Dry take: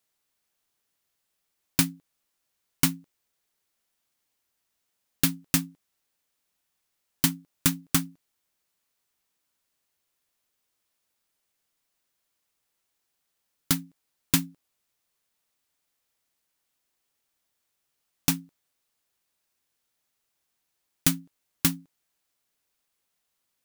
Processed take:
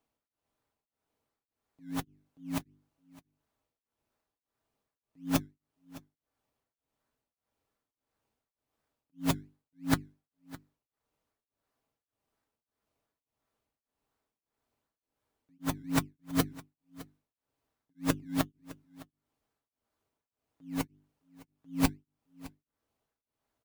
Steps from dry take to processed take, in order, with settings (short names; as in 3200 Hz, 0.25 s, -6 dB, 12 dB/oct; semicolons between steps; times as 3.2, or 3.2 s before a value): whole clip reversed; notches 50/100/150/200/250/300/350/400 Hz; in parallel at -3.5 dB: decimation with a swept rate 19×, swing 60% 2.8 Hz; on the sum: high shelf 3300 Hz -10 dB; notch comb 180 Hz; echo 0.611 s -19.5 dB; beating tremolo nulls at 1.7 Hz; gain -2 dB